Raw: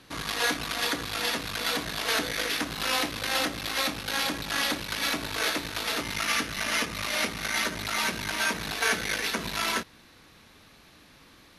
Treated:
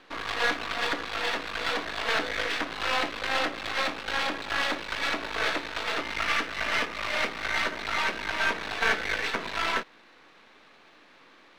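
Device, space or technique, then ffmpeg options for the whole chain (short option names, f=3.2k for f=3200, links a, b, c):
crystal radio: -af "highpass=360,lowpass=2.9k,aeval=exprs='if(lt(val(0),0),0.447*val(0),val(0))':c=same,volume=5dB"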